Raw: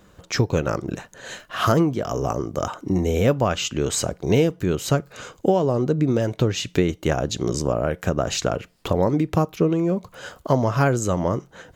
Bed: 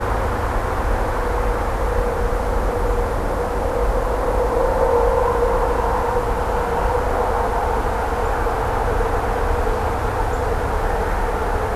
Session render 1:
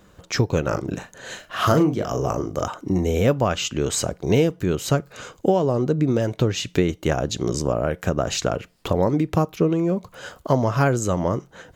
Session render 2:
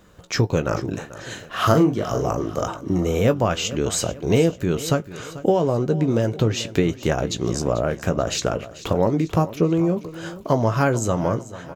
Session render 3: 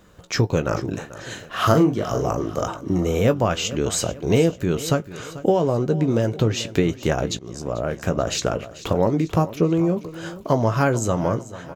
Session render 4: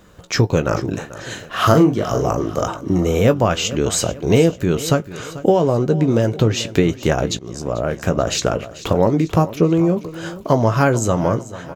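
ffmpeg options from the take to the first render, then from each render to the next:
ffmpeg -i in.wav -filter_complex "[0:a]asettb=1/sr,asplit=3[link_01][link_02][link_03];[link_01]atrim=end=0.674[link_04];[link_02]atrim=start=0.67:end=2.63,asetpts=PTS-STARTPTS,afade=type=in:duration=0.004:curve=qsin,afade=type=out:start_time=1.956:duration=0.004:curve=qsin,asplit=2[link_05][link_06];[link_06]adelay=39,volume=-7.5dB[link_07];[link_05][link_07]amix=inputs=2:normalize=0,atrim=end_sample=86436[link_08];[link_03]atrim=start=2.626[link_09];[link_04][link_08]acrossfade=duration=0.004:curve1=hsin:curve2=qsin[link_10];[link_10][link_09]acrossfade=duration=0.004:curve1=qsin:curve2=hsin" out.wav
ffmpeg -i in.wav -filter_complex "[0:a]asplit=2[link_01][link_02];[link_02]adelay=18,volume=-11dB[link_03];[link_01][link_03]amix=inputs=2:normalize=0,aecho=1:1:440|880|1320|1760:0.158|0.0682|0.0293|0.0126" out.wav
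ffmpeg -i in.wav -filter_complex "[0:a]asplit=2[link_01][link_02];[link_01]atrim=end=7.39,asetpts=PTS-STARTPTS,afade=type=out:start_time=7.386:duration=0.004:curve=hsin:silence=0.0944061[link_03];[link_02]atrim=start=7.39,asetpts=PTS-STARTPTS,afade=type=in:duration=0.93:curve=qsin:silence=0.0944061[link_04];[link_03][link_04]concat=n=2:v=0:a=1" out.wav
ffmpeg -i in.wav -af "volume=4dB,alimiter=limit=-1dB:level=0:latency=1" out.wav

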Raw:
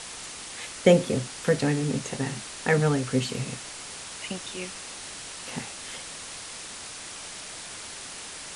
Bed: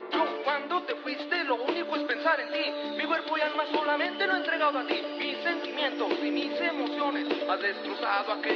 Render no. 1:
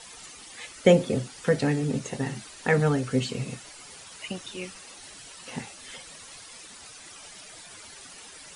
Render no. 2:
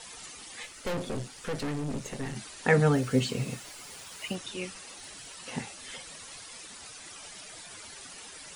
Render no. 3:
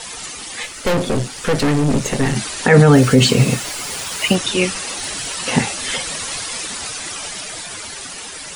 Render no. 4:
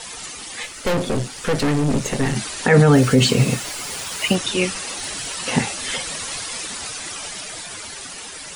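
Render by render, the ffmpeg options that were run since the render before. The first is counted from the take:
ffmpeg -i in.wav -af "afftdn=noise_reduction=11:noise_floor=-40" out.wav
ffmpeg -i in.wav -filter_complex "[0:a]asettb=1/sr,asplit=3[link_01][link_02][link_03];[link_01]atrim=end=0.634[link_04];[link_02]atrim=start=0.63:end=2.36,asetpts=PTS-STARTPTS,afade=type=in:duration=0.004:curve=qsin,afade=type=out:start_time=1.726:duration=0.004:curve=qsin,aeval=exprs='(tanh(31.6*val(0)+0.55)-tanh(0.55))/31.6':channel_layout=same[link_05];[link_03]atrim=start=2.356[link_06];[link_04][link_05]acrossfade=duration=0.004:curve1=hsin:curve2=qsin[link_07];[link_07][link_06]acrossfade=duration=0.004:curve1=qsin:curve2=hsin,asettb=1/sr,asplit=3[link_08][link_09][link_10];[link_08]atrim=end=2.934[link_11];[link_09]atrim=start=2.93:end=4.35,asetpts=PTS-STARTPTS,afade=type=in:duration=0.004:curve=qsin,afade=type=out:start_time=1.416:duration=0.004:curve=qsin,acrusher=bits=7:mix=0:aa=0.5[link_12];[link_10]atrim=start=4.346[link_13];[link_11][link_12]acrossfade=duration=0.004:curve1=hsin:curve2=qsin[link_14];[link_14][link_13]acrossfade=duration=0.004:curve1=qsin:curve2=hsin,asettb=1/sr,asplit=3[link_15][link_16][link_17];[link_15]atrim=end=4.874[link_18];[link_16]atrim=start=4.87:end=5.35,asetpts=PTS-STARTPTS,afade=type=in:duration=0.004:curve=qsin,afade=type=out:start_time=0.476:duration=0.004:curve=qsin,asoftclip=type=hard:threshold=-37.5dB[link_19];[link_17]atrim=start=5.346[link_20];[link_18][link_19]acrossfade=duration=0.004:curve1=hsin:curve2=qsin[link_21];[link_21][link_20]acrossfade=duration=0.004:curve1=qsin:curve2=hsin" out.wav
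ffmpeg -i in.wav -af "dynaudnorm=framelen=390:gausssize=9:maxgain=5.5dB,alimiter=level_in=14.5dB:limit=-1dB:release=50:level=0:latency=1" out.wav
ffmpeg -i in.wav -af "volume=-3dB" out.wav

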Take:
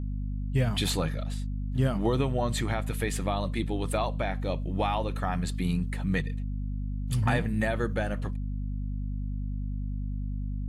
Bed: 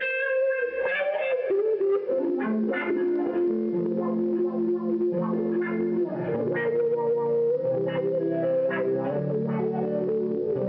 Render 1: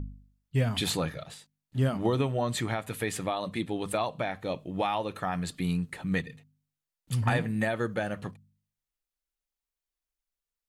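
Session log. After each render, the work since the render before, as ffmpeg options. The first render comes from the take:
ffmpeg -i in.wav -af "bandreject=frequency=50:width_type=h:width=4,bandreject=frequency=100:width_type=h:width=4,bandreject=frequency=150:width_type=h:width=4,bandreject=frequency=200:width_type=h:width=4,bandreject=frequency=250:width_type=h:width=4" out.wav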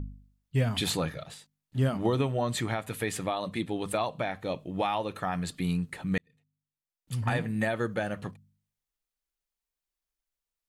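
ffmpeg -i in.wav -filter_complex "[0:a]asplit=2[link_01][link_02];[link_01]atrim=end=6.18,asetpts=PTS-STARTPTS,afade=type=out:start_time=6.176:duration=0.004:curve=hsin[link_03];[link_02]atrim=start=6.18,asetpts=PTS-STARTPTS,afade=type=in:duration=1.48[link_04];[link_03][link_04]concat=n=2:v=0:a=1" out.wav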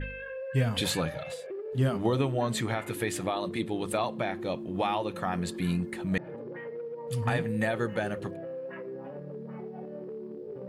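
ffmpeg -i in.wav -i bed.wav -filter_complex "[1:a]volume=-14dB[link_01];[0:a][link_01]amix=inputs=2:normalize=0" out.wav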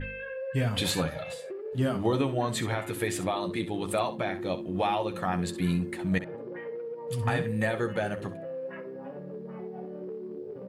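ffmpeg -i in.wav -af "aecho=1:1:11|65:0.355|0.237" out.wav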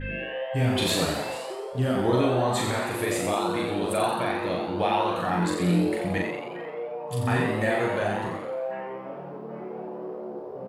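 ffmpeg -i in.wav -filter_complex "[0:a]asplit=2[link_01][link_02];[link_02]adelay=40,volume=-2dB[link_03];[link_01][link_03]amix=inputs=2:normalize=0,asplit=9[link_04][link_05][link_06][link_07][link_08][link_09][link_10][link_11][link_12];[link_05]adelay=87,afreqshift=130,volume=-5dB[link_13];[link_06]adelay=174,afreqshift=260,volume=-9.6dB[link_14];[link_07]adelay=261,afreqshift=390,volume=-14.2dB[link_15];[link_08]adelay=348,afreqshift=520,volume=-18.7dB[link_16];[link_09]adelay=435,afreqshift=650,volume=-23.3dB[link_17];[link_10]adelay=522,afreqshift=780,volume=-27.9dB[link_18];[link_11]adelay=609,afreqshift=910,volume=-32.5dB[link_19];[link_12]adelay=696,afreqshift=1040,volume=-37.1dB[link_20];[link_04][link_13][link_14][link_15][link_16][link_17][link_18][link_19][link_20]amix=inputs=9:normalize=0" out.wav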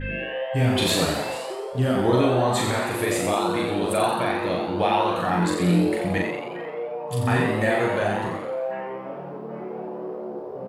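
ffmpeg -i in.wav -af "volume=3dB" out.wav

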